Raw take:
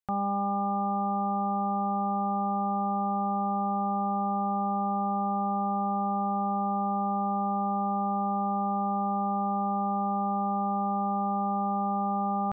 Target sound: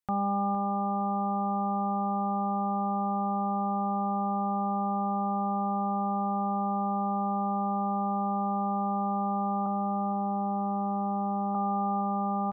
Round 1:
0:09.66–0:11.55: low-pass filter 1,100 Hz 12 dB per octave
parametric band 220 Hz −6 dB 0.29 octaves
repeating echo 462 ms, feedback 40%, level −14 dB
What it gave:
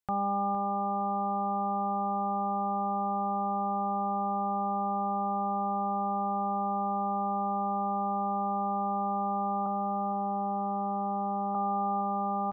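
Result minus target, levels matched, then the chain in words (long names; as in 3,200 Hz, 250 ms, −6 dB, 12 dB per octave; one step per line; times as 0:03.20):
250 Hz band −3.5 dB
0:09.66–0:11.55: low-pass filter 1,100 Hz 12 dB per octave
parametric band 220 Hz +2.5 dB 0.29 octaves
repeating echo 462 ms, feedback 40%, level −14 dB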